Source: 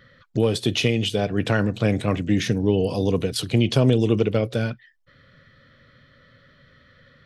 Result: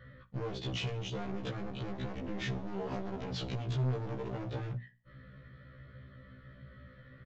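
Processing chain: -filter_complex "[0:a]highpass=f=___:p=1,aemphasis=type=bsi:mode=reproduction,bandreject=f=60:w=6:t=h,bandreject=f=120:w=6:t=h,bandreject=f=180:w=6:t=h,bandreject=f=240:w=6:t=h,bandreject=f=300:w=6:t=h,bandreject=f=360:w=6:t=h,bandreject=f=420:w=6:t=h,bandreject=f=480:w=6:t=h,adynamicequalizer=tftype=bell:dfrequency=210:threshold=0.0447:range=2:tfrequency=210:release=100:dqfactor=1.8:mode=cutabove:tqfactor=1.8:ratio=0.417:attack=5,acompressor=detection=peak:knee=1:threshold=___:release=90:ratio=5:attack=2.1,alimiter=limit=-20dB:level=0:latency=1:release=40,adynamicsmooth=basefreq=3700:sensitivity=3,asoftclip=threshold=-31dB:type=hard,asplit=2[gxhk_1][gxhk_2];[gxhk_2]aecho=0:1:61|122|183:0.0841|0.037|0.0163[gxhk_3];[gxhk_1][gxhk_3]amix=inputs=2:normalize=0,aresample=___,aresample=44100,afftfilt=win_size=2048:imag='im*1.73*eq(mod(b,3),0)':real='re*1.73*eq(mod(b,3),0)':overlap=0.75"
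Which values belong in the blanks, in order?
48, -21dB, 16000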